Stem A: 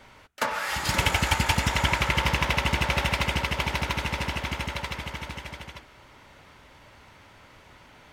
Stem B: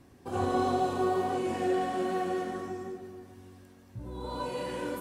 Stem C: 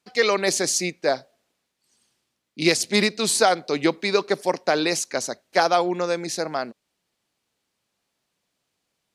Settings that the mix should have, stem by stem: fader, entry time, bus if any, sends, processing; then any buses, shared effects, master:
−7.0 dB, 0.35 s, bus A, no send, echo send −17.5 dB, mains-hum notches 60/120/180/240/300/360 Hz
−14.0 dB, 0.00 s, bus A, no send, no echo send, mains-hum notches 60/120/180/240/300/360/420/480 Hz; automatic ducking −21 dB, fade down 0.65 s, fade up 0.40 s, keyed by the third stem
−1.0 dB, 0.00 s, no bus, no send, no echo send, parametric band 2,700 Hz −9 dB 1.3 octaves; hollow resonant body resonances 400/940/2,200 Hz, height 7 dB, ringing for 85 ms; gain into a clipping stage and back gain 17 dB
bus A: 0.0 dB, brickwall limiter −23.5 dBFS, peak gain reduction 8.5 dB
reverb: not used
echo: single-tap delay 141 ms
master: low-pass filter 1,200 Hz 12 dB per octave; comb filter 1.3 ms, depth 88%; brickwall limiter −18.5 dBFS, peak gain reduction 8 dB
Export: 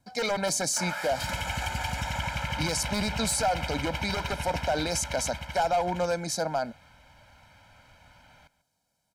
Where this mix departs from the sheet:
stem A: missing mains-hum notches 60/120/180/240/300/360 Hz
master: missing low-pass filter 1,200 Hz 12 dB per octave

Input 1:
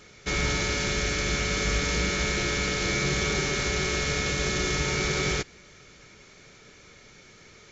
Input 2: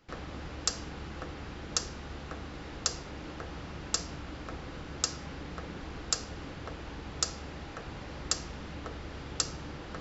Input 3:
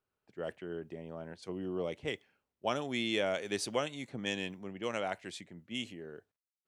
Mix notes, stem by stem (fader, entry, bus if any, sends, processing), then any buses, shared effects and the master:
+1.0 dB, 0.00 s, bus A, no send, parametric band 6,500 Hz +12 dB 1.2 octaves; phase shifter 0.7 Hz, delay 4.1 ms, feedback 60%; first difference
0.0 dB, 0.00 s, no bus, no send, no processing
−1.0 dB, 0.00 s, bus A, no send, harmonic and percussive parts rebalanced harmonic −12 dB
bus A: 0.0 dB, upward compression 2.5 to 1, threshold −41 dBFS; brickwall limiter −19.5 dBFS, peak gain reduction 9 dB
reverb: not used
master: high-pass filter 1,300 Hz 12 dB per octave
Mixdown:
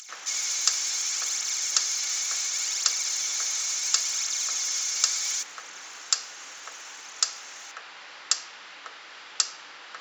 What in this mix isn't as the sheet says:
stem 2 0.0 dB → +6.5 dB
stem 3: muted

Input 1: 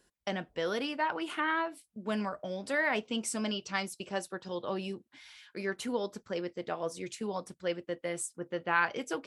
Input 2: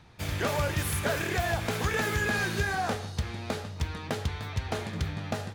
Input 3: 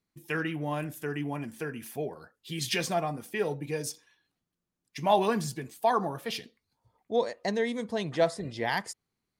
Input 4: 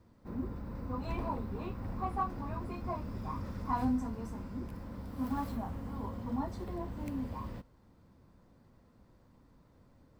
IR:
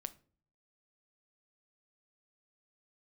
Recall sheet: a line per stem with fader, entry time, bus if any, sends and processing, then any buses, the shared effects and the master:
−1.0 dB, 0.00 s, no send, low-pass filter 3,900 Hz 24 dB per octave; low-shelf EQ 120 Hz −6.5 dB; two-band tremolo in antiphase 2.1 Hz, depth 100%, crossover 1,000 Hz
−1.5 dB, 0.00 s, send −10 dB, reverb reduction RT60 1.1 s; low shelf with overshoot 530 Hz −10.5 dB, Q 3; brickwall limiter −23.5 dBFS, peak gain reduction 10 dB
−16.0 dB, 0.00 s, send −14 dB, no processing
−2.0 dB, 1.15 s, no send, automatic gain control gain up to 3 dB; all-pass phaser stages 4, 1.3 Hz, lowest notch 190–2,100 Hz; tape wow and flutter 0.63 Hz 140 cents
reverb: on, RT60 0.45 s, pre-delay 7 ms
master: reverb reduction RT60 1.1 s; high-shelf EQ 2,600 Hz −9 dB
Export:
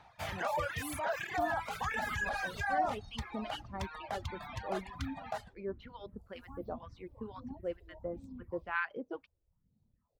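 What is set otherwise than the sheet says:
stem 3: muted
stem 4 −2.0 dB → −12.5 dB

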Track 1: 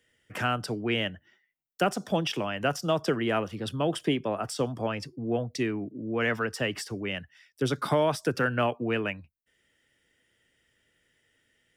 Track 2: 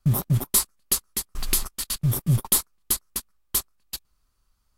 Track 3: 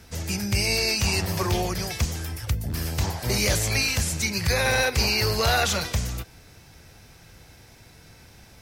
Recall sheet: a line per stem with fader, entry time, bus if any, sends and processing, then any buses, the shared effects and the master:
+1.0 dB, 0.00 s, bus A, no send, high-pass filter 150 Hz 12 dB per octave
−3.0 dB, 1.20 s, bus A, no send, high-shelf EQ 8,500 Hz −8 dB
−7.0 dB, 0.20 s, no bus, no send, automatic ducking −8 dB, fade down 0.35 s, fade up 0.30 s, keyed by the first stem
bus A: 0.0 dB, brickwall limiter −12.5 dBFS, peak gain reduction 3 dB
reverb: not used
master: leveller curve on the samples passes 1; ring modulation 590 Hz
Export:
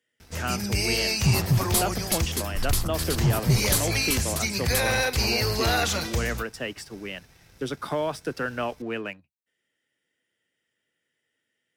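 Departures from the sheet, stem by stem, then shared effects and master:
stem 1 +1.0 dB → −6.5 dB
stem 3 −7.0 dB → +2.5 dB
master: missing ring modulation 590 Hz

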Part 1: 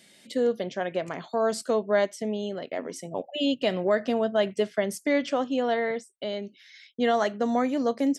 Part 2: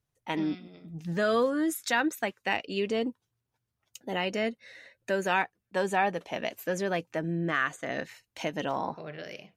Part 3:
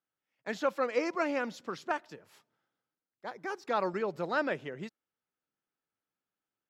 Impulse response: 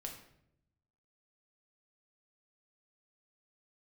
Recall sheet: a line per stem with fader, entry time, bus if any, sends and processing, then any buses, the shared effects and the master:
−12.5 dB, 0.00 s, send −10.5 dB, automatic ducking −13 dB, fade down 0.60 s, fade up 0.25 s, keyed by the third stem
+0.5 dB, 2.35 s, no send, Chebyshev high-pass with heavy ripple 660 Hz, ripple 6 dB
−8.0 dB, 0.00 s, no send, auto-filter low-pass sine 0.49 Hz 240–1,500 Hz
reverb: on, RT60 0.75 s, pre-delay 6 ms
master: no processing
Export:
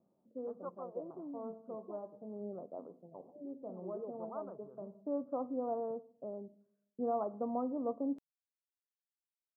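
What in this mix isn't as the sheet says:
stem 2: muted
stem 3 −8.0 dB → −17.0 dB
master: extra Butterworth low-pass 1,200 Hz 72 dB per octave

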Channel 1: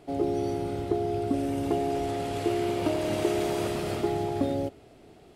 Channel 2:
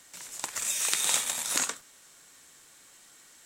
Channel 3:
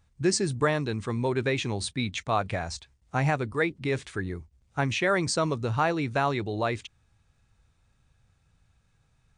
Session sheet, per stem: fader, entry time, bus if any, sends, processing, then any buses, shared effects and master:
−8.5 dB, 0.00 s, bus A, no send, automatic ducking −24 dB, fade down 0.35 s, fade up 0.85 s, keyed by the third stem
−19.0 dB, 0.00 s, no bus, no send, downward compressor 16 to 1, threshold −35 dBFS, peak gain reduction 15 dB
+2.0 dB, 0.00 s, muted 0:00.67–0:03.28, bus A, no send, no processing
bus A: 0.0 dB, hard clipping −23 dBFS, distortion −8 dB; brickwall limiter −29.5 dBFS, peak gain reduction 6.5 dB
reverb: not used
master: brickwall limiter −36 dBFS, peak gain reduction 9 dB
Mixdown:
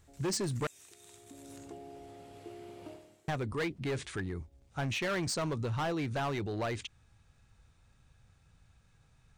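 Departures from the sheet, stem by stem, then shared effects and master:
stem 1 −8.5 dB → −20.5 dB
master: missing brickwall limiter −36 dBFS, peak gain reduction 9 dB

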